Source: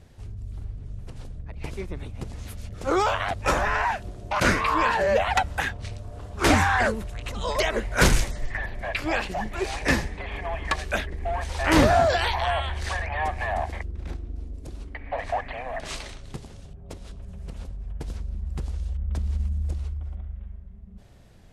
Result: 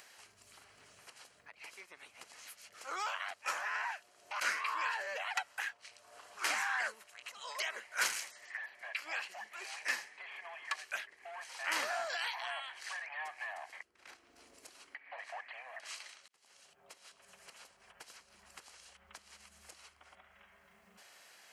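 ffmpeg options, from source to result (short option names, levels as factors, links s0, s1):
-filter_complex "[0:a]asplit=2[s0][s1];[s0]atrim=end=16.28,asetpts=PTS-STARTPTS,afade=t=out:st=16.276:d=0.004:c=hsin[s2];[s1]atrim=start=16.28,asetpts=PTS-STARTPTS,afade=t=in:d=1.33[s3];[s2][s3]concat=n=2:v=0:a=1,highpass=1300,bandreject=f=3600:w=7.5,acompressor=mode=upward:threshold=0.0158:ratio=2.5,volume=0.355"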